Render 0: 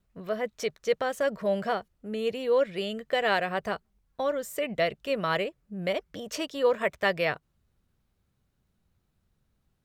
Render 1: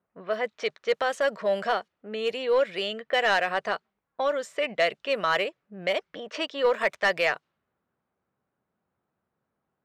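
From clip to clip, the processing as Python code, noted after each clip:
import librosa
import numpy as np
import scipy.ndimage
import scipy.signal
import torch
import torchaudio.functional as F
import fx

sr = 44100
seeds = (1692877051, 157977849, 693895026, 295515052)

y = fx.env_lowpass(x, sr, base_hz=1200.0, full_db=-23.5)
y = fx.weighting(y, sr, curve='A')
y = 10.0 ** (-18.0 / 20.0) * np.tanh(y / 10.0 ** (-18.0 / 20.0))
y = y * librosa.db_to_amplitude(5.0)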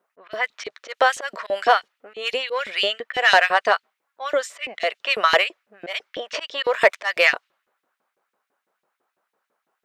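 y = fx.auto_swell(x, sr, attack_ms=154.0)
y = fx.filter_lfo_highpass(y, sr, shape='saw_up', hz=6.0, low_hz=320.0, high_hz=3500.0, q=1.2)
y = y * librosa.db_to_amplitude(9.0)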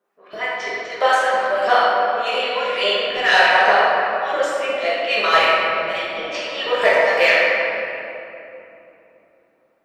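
y = fx.room_shoebox(x, sr, seeds[0], volume_m3=140.0, walls='hard', distance_m=1.3)
y = y * librosa.db_to_amplitude(-5.5)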